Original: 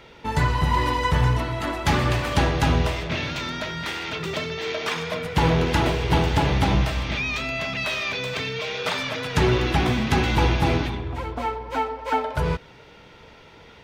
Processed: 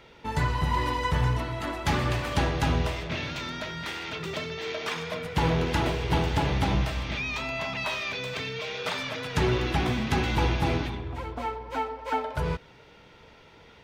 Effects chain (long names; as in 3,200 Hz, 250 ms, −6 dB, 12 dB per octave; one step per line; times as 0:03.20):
0:07.36–0:07.97: parametric band 920 Hz +11.5 dB 0.44 octaves
level −5 dB